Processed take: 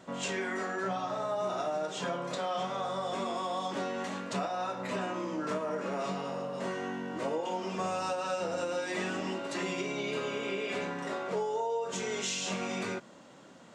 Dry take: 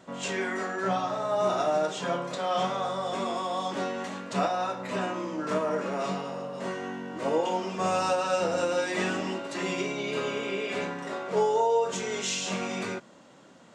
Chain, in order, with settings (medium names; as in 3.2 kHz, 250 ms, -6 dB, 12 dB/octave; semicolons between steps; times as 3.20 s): compression 4:1, threshold -31 dBFS, peak gain reduction 9.5 dB